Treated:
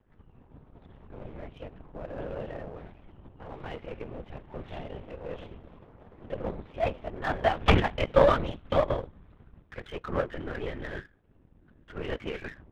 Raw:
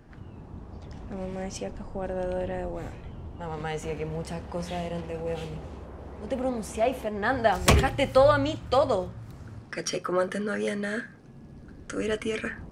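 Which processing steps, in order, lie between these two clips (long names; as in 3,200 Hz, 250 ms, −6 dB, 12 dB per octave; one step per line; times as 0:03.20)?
linear-prediction vocoder at 8 kHz whisper
power curve on the samples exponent 1.4
level +2.5 dB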